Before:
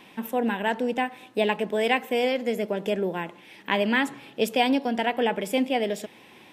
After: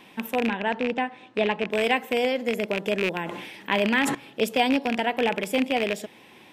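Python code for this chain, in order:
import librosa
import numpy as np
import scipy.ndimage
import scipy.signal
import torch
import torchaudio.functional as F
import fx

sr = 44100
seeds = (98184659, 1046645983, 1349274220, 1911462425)

y = fx.rattle_buzz(x, sr, strikes_db=-32.0, level_db=-15.0)
y = fx.air_absorb(y, sr, metres=110.0, at=(0.48, 1.71))
y = fx.sustainer(y, sr, db_per_s=39.0, at=(3.21, 4.15))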